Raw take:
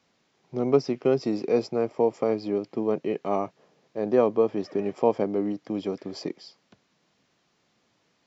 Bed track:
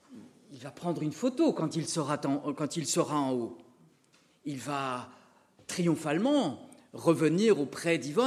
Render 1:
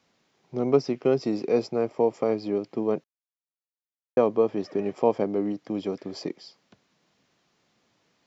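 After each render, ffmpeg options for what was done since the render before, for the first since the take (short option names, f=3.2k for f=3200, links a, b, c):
-filter_complex "[0:a]asplit=3[a][b][c];[a]atrim=end=3.04,asetpts=PTS-STARTPTS,afade=t=out:st=3.036:d=0.004:c=hsin[d];[b]atrim=start=3.04:end=4.17,asetpts=PTS-STARTPTS,volume=0[e];[c]atrim=start=4.17,asetpts=PTS-STARTPTS,afade=t=in:d=0.004:c=hsin[f];[d][e][f]concat=n=3:v=0:a=1"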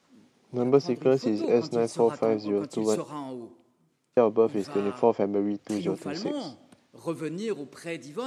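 -filter_complex "[1:a]volume=-7dB[a];[0:a][a]amix=inputs=2:normalize=0"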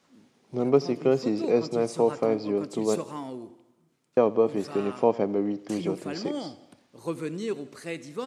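-af "aecho=1:1:85|170|255|340|425:0.0944|0.0557|0.0329|0.0194|0.0114"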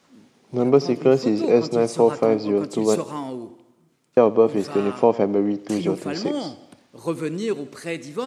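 -af "volume=6dB,alimiter=limit=-3dB:level=0:latency=1"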